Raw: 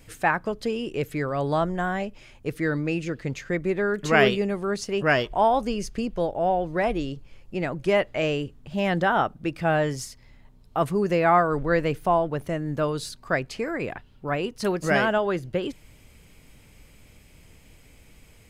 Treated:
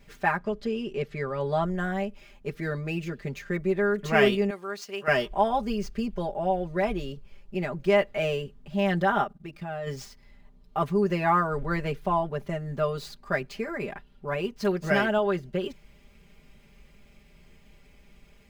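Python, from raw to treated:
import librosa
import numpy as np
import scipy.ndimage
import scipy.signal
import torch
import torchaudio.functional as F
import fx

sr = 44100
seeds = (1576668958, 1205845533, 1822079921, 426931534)

y = scipy.signal.medfilt(x, 5)
y = fx.air_absorb(y, sr, metres=51.0, at=(0.38, 1.63))
y = fx.highpass(y, sr, hz=1100.0, slope=6, at=(4.5, 5.08))
y = fx.level_steps(y, sr, step_db=16, at=(9.23, 9.86), fade=0.02)
y = y + 0.96 * np.pad(y, (int(5.0 * sr / 1000.0), 0))[:len(y)]
y = F.gain(torch.from_numpy(y), -5.5).numpy()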